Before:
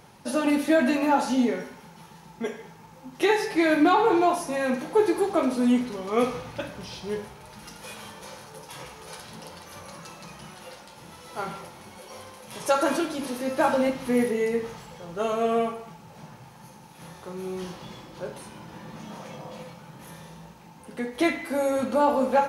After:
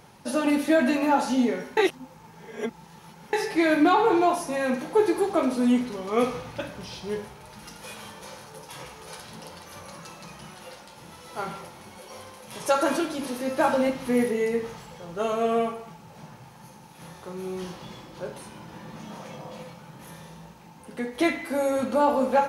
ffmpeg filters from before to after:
-filter_complex "[0:a]asplit=3[s0][s1][s2];[s0]atrim=end=1.772[s3];[s1]atrim=start=1.768:end=3.332,asetpts=PTS-STARTPTS,areverse[s4];[s2]atrim=start=3.328[s5];[s3][s4]acrossfade=d=0.004:c1=hsin:c2=hsin[s6];[s6][s5]acrossfade=d=0.004:c1=hsin:c2=hsin"

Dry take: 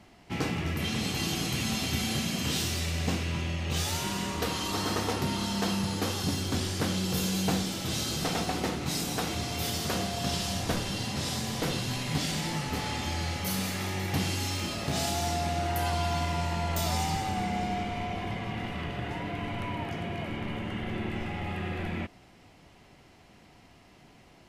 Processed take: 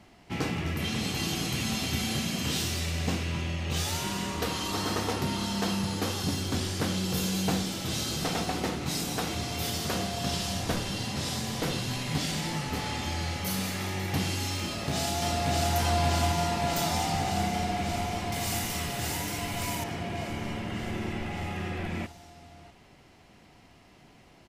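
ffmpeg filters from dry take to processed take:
-filter_complex "[0:a]asplit=2[s0][s1];[s1]afade=t=in:st=14.63:d=0.01,afade=t=out:st=15.74:d=0.01,aecho=0:1:580|1160|1740|2320|2900|3480|4060|4640|5220|5800|6380|6960:0.891251|0.713001|0.570401|0.45632|0.365056|0.292045|0.233636|0.186909|0.149527|0.119622|0.0956973|0.0765579[s2];[s0][s2]amix=inputs=2:normalize=0,asettb=1/sr,asplit=3[s3][s4][s5];[s3]atrim=end=18.324[s6];[s4]atrim=start=18.32:end=19.84,asetpts=PTS-STARTPTS,afade=t=in:d=0.004:c=qsin,afade=t=out:st=1.516:d=0.004:c=qsin,aemphasis=mode=production:type=75fm[s7];[s5]atrim=start=19.836[s8];[s6][s7]acrossfade=d=0.004:c1=hsin:c2=qsin[s9];[s9][s8]acrossfade=d=0.004:c1=qsin:c2=hsin"

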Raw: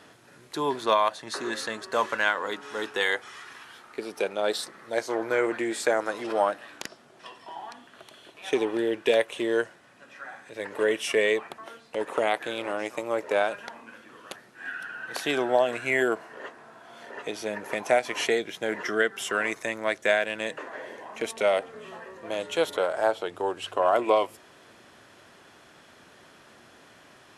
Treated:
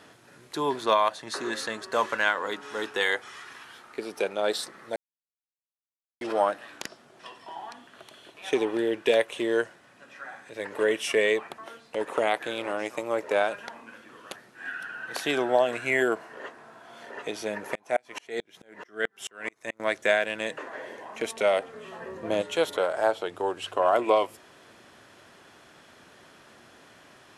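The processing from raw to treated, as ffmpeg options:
-filter_complex "[0:a]asettb=1/sr,asplit=3[s0][s1][s2];[s0]atrim=end=17.754[s3];[s1]atrim=start=17.75:end=19.8,asetpts=PTS-STARTPTS,afade=t=in:d=0.004:c=qsin,afade=t=out:st=2.046:d=0.004:c=qsin,aeval=exprs='val(0)*pow(10,-37*if(lt(mod(-4.6*n/s,1),2*abs(-4.6)/1000),1-mod(-4.6*n/s,1)/(2*abs(-4.6)/1000),(mod(-4.6*n/s,1)-2*abs(-4.6)/1000)/(1-2*abs(-4.6)/1000))/20)':c=same[s4];[s2]atrim=start=19.796[s5];[s3][s4]acrossfade=d=0.004:c1=hsin:c2=qsin[s6];[s6][s5]acrossfade=d=0.004:c1=qsin:c2=hsin,asettb=1/sr,asplit=3[s7][s8][s9];[s7]atrim=end=22.004[s10];[s8]atrim=start=22:end=22.42,asetpts=PTS-STARTPTS,afade=t=in:d=0.004:c=qsin,afade=t=out:st=0.416:d=0.004:c=qsin,lowshelf=f=490:g=10.5[s11];[s9]atrim=start=22.416[s12];[s10][s11]acrossfade=d=0.004:c1=hsin:c2=qsin[s13];[s13][s12]acrossfade=d=0.004:c1=qsin:c2=hsin,asplit=3[s14][s15][s16];[s14]atrim=end=4.96,asetpts=PTS-STARTPTS,afade=t=out:st=4.956:d=0.004:c=hsin[s17];[s15]atrim=start=4.96:end=6.21,asetpts=PTS-STARTPTS,volume=0[s18];[s16]atrim=start=6.21,asetpts=PTS-STARTPTS,afade=t=in:d=0.004:c=hsin[s19];[s17][s18][s19]concat=n=3:v=0:a=1"

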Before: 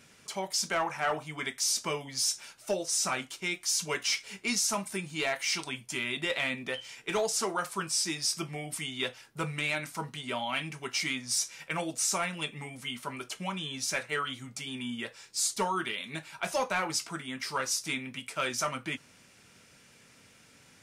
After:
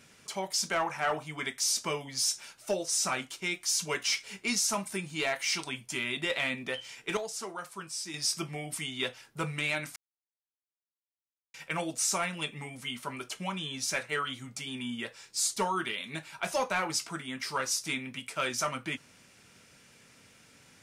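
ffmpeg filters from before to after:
-filter_complex "[0:a]asplit=5[s0][s1][s2][s3][s4];[s0]atrim=end=7.172[s5];[s1]atrim=start=7.168:end=8.142,asetpts=PTS-STARTPTS,volume=0.398[s6];[s2]atrim=start=8.138:end=9.96,asetpts=PTS-STARTPTS,afade=t=out:st=1.818:d=0.004:c=hsin[s7];[s3]atrim=start=9.96:end=11.54,asetpts=PTS-STARTPTS,volume=0[s8];[s4]atrim=start=11.54,asetpts=PTS-STARTPTS,afade=t=in:d=0.004:c=hsin[s9];[s5][s6]acrossfade=d=0.004:c1=hsin:c2=hsin[s10];[s7][s8][s9]concat=n=3:v=0:a=1[s11];[s10][s11]acrossfade=d=0.004:c1=hsin:c2=hsin"

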